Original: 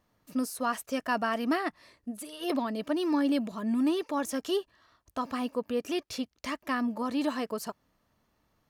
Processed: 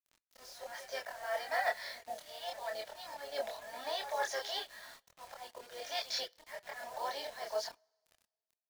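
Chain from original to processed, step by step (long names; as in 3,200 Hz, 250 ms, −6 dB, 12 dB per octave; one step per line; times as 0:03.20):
elliptic band-pass filter 600–8,000 Hz, stop band 50 dB
reversed playback
downward compressor 4 to 1, threshold −47 dBFS, peak gain reduction 18 dB
reversed playback
volume swells 316 ms
phaser with its sweep stopped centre 1,800 Hz, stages 8
echo ahead of the sound 139 ms −14.5 dB
pitch-shifted copies added −5 semitones −15 dB, +4 semitones −17 dB
log-companded quantiser 6 bits
multi-voice chorus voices 4, 0.55 Hz, delay 26 ms, depth 2.5 ms
on a send at −17 dB: convolution reverb, pre-delay 3 ms
on the sum: level +17.5 dB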